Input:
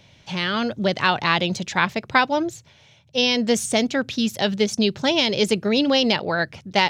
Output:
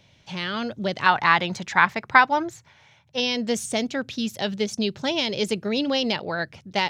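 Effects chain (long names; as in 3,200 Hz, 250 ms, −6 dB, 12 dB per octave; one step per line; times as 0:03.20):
0:01.06–0:03.20: flat-topped bell 1,300 Hz +8.5 dB
level −5 dB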